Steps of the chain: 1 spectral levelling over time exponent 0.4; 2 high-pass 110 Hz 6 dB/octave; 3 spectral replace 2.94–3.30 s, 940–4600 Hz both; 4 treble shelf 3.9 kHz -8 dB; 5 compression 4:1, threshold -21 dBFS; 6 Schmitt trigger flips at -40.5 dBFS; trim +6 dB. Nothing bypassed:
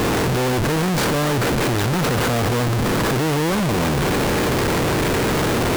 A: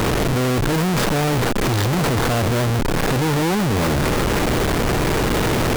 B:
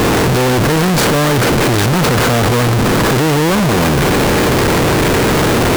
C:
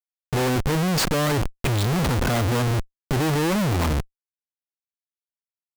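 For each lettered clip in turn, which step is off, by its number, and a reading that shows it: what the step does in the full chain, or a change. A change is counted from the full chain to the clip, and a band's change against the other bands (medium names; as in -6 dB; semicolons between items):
2, crest factor change +2.0 dB; 5, loudness change +7.0 LU; 1, 125 Hz band +3.0 dB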